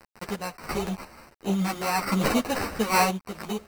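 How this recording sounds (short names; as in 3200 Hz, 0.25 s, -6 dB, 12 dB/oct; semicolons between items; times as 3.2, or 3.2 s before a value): a quantiser's noise floor 8-bit, dither none; random-step tremolo 2.9 Hz, depth 70%; aliases and images of a low sample rate 3400 Hz, jitter 0%; a shimmering, thickened sound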